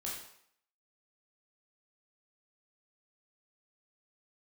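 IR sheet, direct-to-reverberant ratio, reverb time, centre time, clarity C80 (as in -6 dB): -4.5 dB, 0.65 s, 49 ms, 6.0 dB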